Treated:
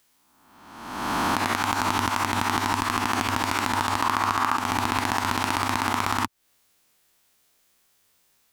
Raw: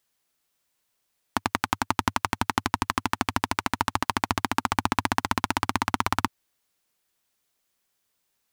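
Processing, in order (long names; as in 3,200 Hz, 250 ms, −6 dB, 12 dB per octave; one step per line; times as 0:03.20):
peak hold with a rise ahead of every peak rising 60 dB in 1.19 s
0:04.01–0:04.55: parametric band 1,200 Hz +6.5 dB → +13 dB 0.72 octaves
downward compressor 4 to 1, threshold −30 dBFS, peak gain reduction 16 dB
level +7.5 dB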